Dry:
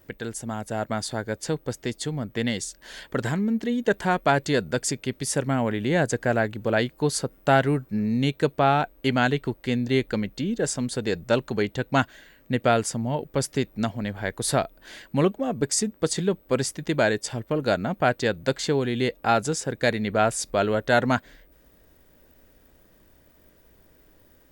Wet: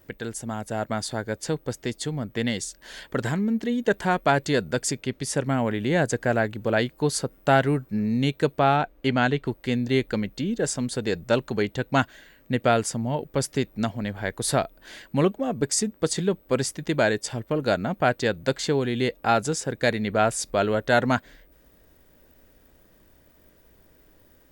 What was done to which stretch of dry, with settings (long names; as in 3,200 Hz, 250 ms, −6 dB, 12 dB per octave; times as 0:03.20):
0:05.01–0:05.46: high-shelf EQ 10,000 Hz −7.5 dB
0:08.76–0:09.47: high-shelf EQ 7,600 Hz −10.5 dB